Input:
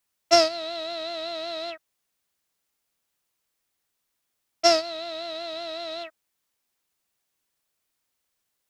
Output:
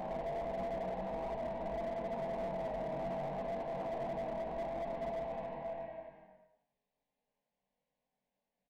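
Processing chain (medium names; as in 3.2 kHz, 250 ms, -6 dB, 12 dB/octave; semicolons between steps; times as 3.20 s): spectral contrast reduction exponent 0.31; low-pass 1.3 kHz 12 dB/octave; low-pass that closes with the level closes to 300 Hz, closed at -33 dBFS; dynamic bell 750 Hz, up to +6 dB, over -57 dBFS, Q 3.4; Paulstretch 7.9×, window 0.25 s, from 1.04 s; static phaser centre 350 Hz, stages 6; doubling 21 ms -2.5 dB; delay 97 ms -9 dB; slew-rate limiter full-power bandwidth 7.3 Hz; trim +3 dB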